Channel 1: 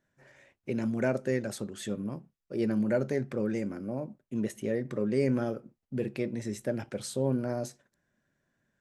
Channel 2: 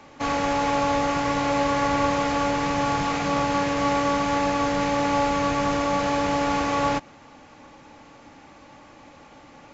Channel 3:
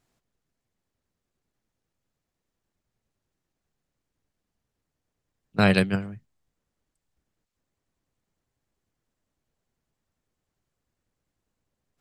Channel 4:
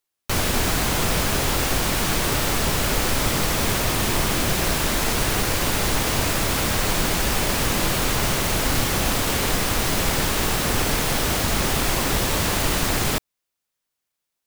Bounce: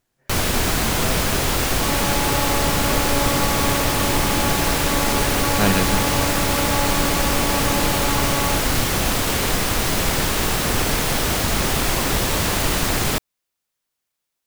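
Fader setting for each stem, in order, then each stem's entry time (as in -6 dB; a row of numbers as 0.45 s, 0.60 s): -7.0 dB, -2.5 dB, -1.0 dB, +1.5 dB; 0.00 s, 1.60 s, 0.00 s, 0.00 s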